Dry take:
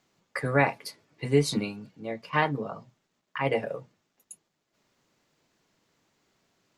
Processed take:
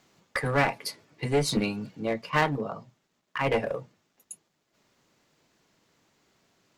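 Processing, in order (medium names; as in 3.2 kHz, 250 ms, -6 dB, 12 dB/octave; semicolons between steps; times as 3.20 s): gain riding within 5 dB 0.5 s; one-sided clip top -27 dBFS; trim +3.5 dB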